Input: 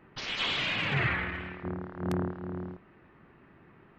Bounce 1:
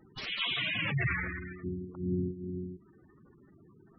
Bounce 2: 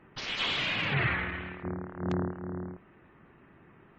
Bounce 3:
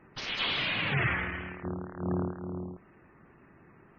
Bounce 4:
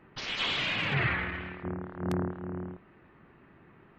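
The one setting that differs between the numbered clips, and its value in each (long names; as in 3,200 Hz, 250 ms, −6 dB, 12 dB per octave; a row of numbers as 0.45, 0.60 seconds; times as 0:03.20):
gate on every frequency bin, under each frame's peak: −10, −40, −25, −50 decibels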